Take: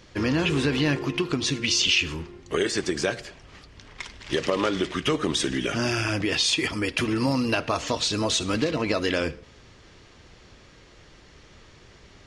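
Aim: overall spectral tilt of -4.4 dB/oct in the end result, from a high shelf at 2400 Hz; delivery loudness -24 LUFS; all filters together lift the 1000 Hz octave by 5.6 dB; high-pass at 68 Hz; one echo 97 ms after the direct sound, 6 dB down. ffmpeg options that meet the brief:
-af "highpass=68,equalizer=f=1k:t=o:g=8,highshelf=f=2.4k:g=-5,aecho=1:1:97:0.501"

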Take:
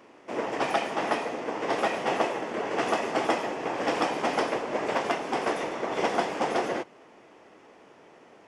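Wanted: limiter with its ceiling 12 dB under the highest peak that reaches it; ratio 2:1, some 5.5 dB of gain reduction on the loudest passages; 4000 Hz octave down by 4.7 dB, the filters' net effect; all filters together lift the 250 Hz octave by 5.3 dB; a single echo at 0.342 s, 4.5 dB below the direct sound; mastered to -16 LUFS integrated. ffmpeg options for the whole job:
-af "equalizer=f=250:t=o:g=7,equalizer=f=4k:t=o:g=-7,acompressor=threshold=-30dB:ratio=2,alimiter=level_in=4dB:limit=-24dB:level=0:latency=1,volume=-4dB,aecho=1:1:342:0.596,volume=19.5dB"

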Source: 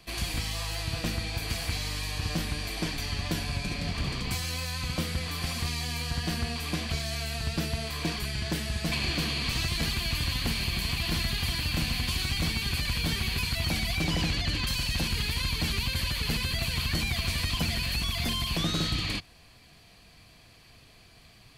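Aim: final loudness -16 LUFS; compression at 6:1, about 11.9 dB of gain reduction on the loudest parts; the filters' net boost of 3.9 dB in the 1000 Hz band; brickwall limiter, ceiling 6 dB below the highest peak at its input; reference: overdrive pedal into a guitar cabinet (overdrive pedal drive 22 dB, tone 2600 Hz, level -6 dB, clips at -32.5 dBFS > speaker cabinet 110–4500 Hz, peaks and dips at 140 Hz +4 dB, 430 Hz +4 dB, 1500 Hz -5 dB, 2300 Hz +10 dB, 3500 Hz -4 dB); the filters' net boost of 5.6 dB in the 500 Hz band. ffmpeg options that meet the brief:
-filter_complex "[0:a]equalizer=f=500:t=o:g=4,equalizer=f=1k:t=o:g=4,acompressor=threshold=-38dB:ratio=6,alimiter=level_in=9dB:limit=-24dB:level=0:latency=1,volume=-9dB,asplit=2[a][b];[b]highpass=f=720:p=1,volume=22dB,asoftclip=type=tanh:threshold=-32.5dB[c];[a][c]amix=inputs=2:normalize=0,lowpass=f=2.6k:p=1,volume=-6dB,highpass=110,equalizer=f=140:t=q:w=4:g=4,equalizer=f=430:t=q:w=4:g=4,equalizer=f=1.5k:t=q:w=4:g=-5,equalizer=f=2.3k:t=q:w=4:g=10,equalizer=f=3.5k:t=q:w=4:g=-4,lowpass=f=4.5k:w=0.5412,lowpass=f=4.5k:w=1.3066,volume=21dB"

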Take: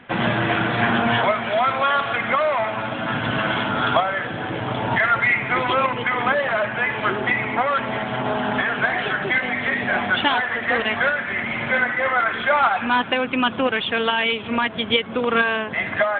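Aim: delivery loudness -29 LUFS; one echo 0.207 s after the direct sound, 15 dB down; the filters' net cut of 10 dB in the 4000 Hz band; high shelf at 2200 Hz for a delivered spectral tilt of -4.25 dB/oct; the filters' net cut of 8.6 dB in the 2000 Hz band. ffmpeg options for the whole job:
-af "equalizer=f=2k:t=o:g=-7,highshelf=f=2.2k:g=-7.5,equalizer=f=4k:t=o:g=-3.5,aecho=1:1:207:0.178,volume=-4.5dB"

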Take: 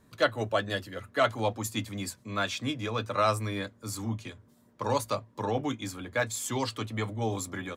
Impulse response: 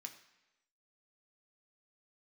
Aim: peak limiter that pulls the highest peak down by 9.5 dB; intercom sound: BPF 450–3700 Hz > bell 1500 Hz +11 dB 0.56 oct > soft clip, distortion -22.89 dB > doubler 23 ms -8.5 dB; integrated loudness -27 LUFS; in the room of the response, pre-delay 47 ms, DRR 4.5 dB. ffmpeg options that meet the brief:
-filter_complex "[0:a]alimiter=limit=-21.5dB:level=0:latency=1,asplit=2[a][b];[1:a]atrim=start_sample=2205,adelay=47[c];[b][c]afir=irnorm=-1:irlink=0,volume=0.5dB[d];[a][d]amix=inputs=2:normalize=0,highpass=450,lowpass=3.7k,equalizer=f=1.5k:t=o:w=0.56:g=11,asoftclip=threshold=-16.5dB,asplit=2[e][f];[f]adelay=23,volume=-8.5dB[g];[e][g]amix=inputs=2:normalize=0,volume=5dB"

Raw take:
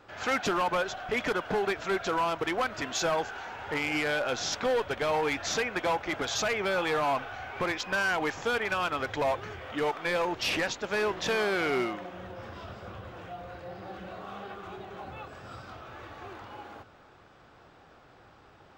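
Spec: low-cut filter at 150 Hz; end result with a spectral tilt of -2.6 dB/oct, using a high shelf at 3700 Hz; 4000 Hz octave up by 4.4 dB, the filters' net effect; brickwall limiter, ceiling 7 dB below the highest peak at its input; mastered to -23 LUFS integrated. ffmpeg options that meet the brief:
-af "highpass=150,highshelf=f=3.7k:g=-4.5,equalizer=f=4k:t=o:g=8.5,volume=10.5dB,alimiter=limit=-13dB:level=0:latency=1"

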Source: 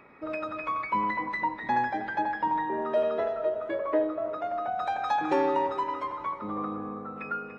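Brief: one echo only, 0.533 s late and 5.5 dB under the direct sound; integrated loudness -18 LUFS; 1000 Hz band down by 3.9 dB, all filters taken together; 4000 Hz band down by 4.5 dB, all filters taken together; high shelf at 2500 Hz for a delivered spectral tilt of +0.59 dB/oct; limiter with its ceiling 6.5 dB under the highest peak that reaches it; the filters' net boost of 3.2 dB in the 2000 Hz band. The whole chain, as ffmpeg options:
-af "equalizer=f=1k:t=o:g=-5.5,equalizer=f=2k:t=o:g=8.5,highshelf=f=2.5k:g=-5.5,equalizer=f=4k:t=o:g=-4,alimiter=limit=-22.5dB:level=0:latency=1,aecho=1:1:533:0.531,volume=13.5dB"

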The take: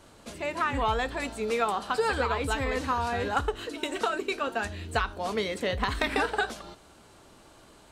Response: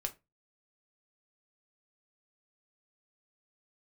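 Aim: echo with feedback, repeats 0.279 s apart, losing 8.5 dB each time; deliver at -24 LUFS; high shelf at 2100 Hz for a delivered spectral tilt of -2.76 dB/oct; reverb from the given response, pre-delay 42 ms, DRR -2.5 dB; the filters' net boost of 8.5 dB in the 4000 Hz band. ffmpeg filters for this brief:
-filter_complex "[0:a]highshelf=f=2.1k:g=6,equalizer=f=4k:t=o:g=5,aecho=1:1:279|558|837|1116:0.376|0.143|0.0543|0.0206,asplit=2[a][b];[1:a]atrim=start_sample=2205,adelay=42[c];[b][c]afir=irnorm=-1:irlink=0,volume=2dB[d];[a][d]amix=inputs=2:normalize=0,volume=-2dB"

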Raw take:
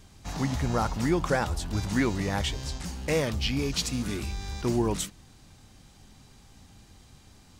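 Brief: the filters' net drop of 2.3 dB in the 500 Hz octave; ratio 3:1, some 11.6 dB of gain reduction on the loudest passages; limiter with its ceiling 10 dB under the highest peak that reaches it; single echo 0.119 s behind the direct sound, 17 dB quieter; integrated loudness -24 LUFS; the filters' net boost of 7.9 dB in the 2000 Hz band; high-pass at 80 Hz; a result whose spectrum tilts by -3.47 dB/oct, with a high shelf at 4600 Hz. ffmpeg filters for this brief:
-af "highpass=80,equalizer=f=500:t=o:g=-3.5,equalizer=f=2k:t=o:g=8.5,highshelf=f=4.6k:g=7.5,acompressor=threshold=-35dB:ratio=3,alimiter=level_in=5.5dB:limit=-24dB:level=0:latency=1,volume=-5.5dB,aecho=1:1:119:0.141,volume=15.5dB"

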